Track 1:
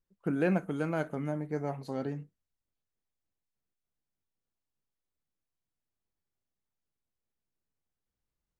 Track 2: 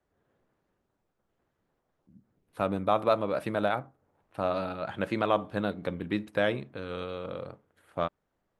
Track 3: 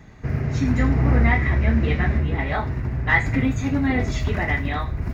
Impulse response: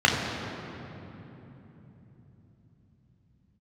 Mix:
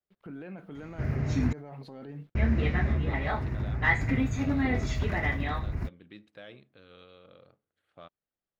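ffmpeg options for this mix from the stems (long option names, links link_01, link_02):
-filter_complex "[0:a]acompressor=threshold=-34dB:ratio=6,acrusher=bits=11:mix=0:aa=0.000001,volume=2dB[link_01];[1:a]equalizer=frequency=6500:width_type=o:width=1.3:gain=14,bandreject=frequency=950:width=8.7,volume=-18dB[link_02];[2:a]adelay=750,volume=-6dB,asplit=3[link_03][link_04][link_05];[link_03]atrim=end=1.53,asetpts=PTS-STARTPTS,afade=type=out:start_time=1.526:duration=0.004:curve=hsin[link_06];[link_04]atrim=start=1.53:end=2.35,asetpts=PTS-STARTPTS,volume=0[link_07];[link_05]atrim=start=2.35,asetpts=PTS-STARTPTS,afade=type=in:duration=0.004:curve=hsin[link_08];[link_06][link_07][link_08]concat=n=3:v=0:a=1[link_09];[link_01][link_02]amix=inputs=2:normalize=0,highshelf=frequency=4900:width_type=q:width=1.5:gain=-11,alimiter=level_in=11dB:limit=-24dB:level=0:latency=1:release=13,volume=-11dB,volume=0dB[link_10];[link_09][link_10]amix=inputs=2:normalize=0"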